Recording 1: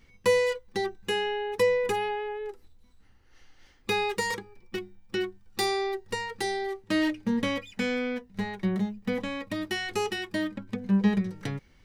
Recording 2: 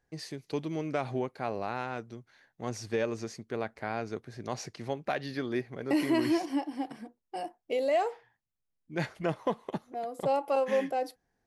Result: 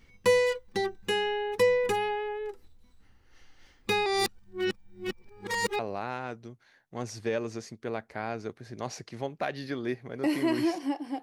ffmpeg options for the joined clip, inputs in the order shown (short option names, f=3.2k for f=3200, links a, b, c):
-filter_complex "[0:a]apad=whole_dur=11.22,atrim=end=11.22,asplit=2[a][b];[a]atrim=end=4.062[c];[b]atrim=start=4.058:end=5.792,asetpts=PTS-STARTPTS,areverse[d];[1:a]atrim=start=1.458:end=6.89[e];[c][d]acrossfade=d=0.004:c1=hsin:c2=hsin[f];[f][e]acrossfade=d=0.004:c1=hsin:c2=hsin"